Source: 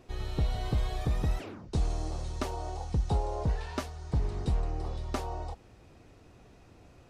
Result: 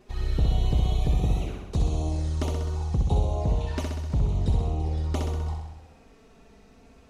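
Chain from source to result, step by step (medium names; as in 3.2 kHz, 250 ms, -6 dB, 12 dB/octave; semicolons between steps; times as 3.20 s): touch-sensitive flanger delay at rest 5.5 ms, full sweep at -28.5 dBFS; flutter echo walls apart 11 m, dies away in 1 s; trim +3.5 dB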